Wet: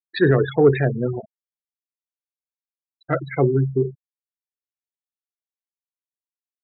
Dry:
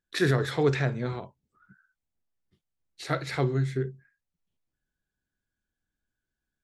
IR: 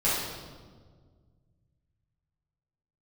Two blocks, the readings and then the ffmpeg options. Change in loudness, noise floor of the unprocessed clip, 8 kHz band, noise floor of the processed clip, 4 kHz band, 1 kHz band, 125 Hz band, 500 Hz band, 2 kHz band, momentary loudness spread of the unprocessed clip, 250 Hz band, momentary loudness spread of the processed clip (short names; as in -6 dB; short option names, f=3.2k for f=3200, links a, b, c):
+8.0 dB, under -85 dBFS, under -30 dB, under -85 dBFS, n/a, +5.0 dB, +6.0 dB, +10.0 dB, +3.5 dB, 11 LU, +8.5 dB, 10 LU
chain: -af "afftfilt=real='re*gte(hypot(re,im),0.0562)':imag='im*gte(hypot(re,im),0.0562)':win_size=1024:overlap=0.75,adynamicequalizer=threshold=0.0158:dfrequency=410:dqfactor=0.73:tfrequency=410:tqfactor=0.73:attack=5:release=100:ratio=0.375:range=3:mode=boostabove:tftype=bell,acontrast=26"